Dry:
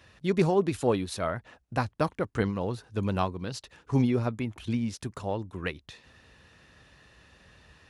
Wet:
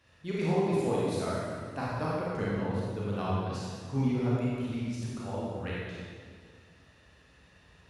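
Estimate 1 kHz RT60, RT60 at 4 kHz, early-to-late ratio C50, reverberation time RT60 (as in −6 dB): 1.8 s, 1.6 s, −3.5 dB, 1.9 s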